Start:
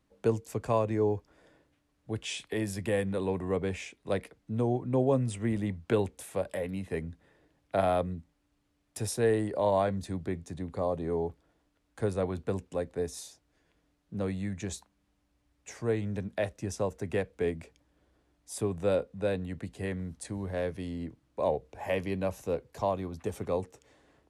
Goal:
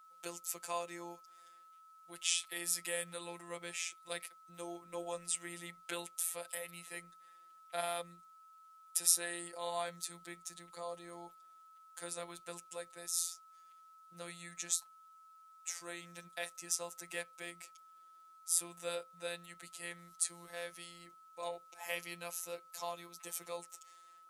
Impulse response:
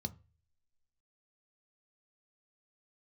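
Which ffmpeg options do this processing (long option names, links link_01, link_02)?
-af "aderivative,afftfilt=real='hypot(re,im)*cos(PI*b)':imag='0':win_size=1024:overlap=0.75,aeval=exprs='val(0)+0.000355*sin(2*PI*1300*n/s)':channel_layout=same,volume=11.5dB"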